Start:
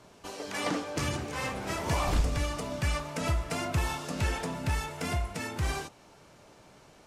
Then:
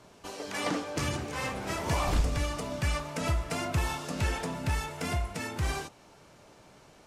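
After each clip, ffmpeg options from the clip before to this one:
-af anull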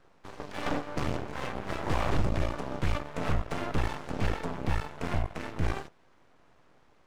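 -af "lowpass=f=1.2k:p=1,aeval=exprs='0.141*(cos(1*acos(clip(val(0)/0.141,-1,1)))-cos(1*PI/2))+0.00562*(cos(7*acos(clip(val(0)/0.141,-1,1)))-cos(7*PI/2))+0.0282*(cos(8*acos(clip(val(0)/0.141,-1,1)))-cos(8*PI/2))':c=same,aeval=exprs='abs(val(0))':c=same"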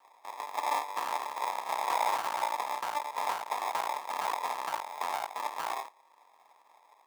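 -filter_complex "[0:a]asplit=2[a][b];[b]alimiter=limit=-24dB:level=0:latency=1,volume=-3dB[c];[a][c]amix=inputs=2:normalize=0,acrusher=samples=30:mix=1:aa=0.000001,highpass=f=930:t=q:w=4.4,volume=-3.5dB"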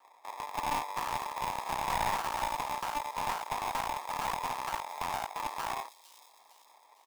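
-filter_complex "[0:a]acrossover=split=3100[a][b];[a]aeval=exprs='clip(val(0),-1,0.0282)':c=same[c];[b]aecho=1:1:456|912|1368|1824|2280:0.299|0.146|0.0717|0.0351|0.0172[d];[c][d]amix=inputs=2:normalize=0"

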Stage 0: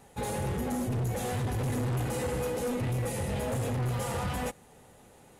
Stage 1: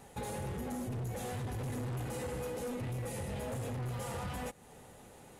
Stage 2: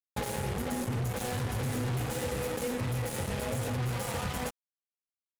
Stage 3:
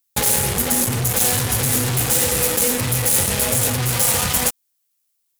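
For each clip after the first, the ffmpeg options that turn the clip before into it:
-af "acompressor=threshold=-41dB:ratio=3,volume=1dB"
-af "acrusher=bits=5:mix=0:aa=0.5,volume=6dB"
-af "crystalizer=i=4.5:c=0,volume=9dB"

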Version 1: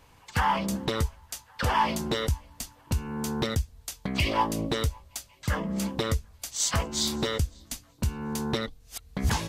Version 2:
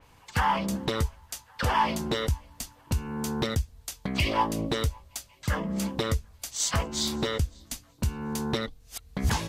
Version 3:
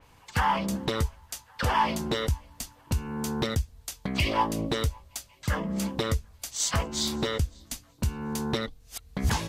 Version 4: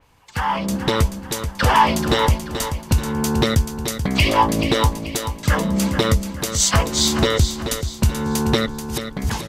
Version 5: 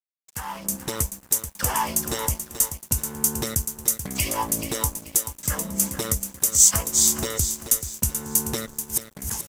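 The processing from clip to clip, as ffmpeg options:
-af "adynamicequalizer=threshold=0.00794:dfrequency=4200:dqfactor=0.7:tfrequency=4200:tqfactor=0.7:attack=5:release=100:ratio=0.375:range=2:mode=cutabove:tftype=highshelf"
-af anull
-filter_complex "[0:a]dynaudnorm=f=120:g=11:m=11dB,asplit=2[a][b];[b]aecho=0:1:433|866|1299|1732:0.355|0.142|0.0568|0.0227[c];[a][c]amix=inputs=2:normalize=0"
-af "aexciter=amount=8.3:drive=6.5:freq=5.9k,aeval=exprs='sgn(val(0))*max(abs(val(0))-0.0282,0)':c=same,volume=-10.5dB"

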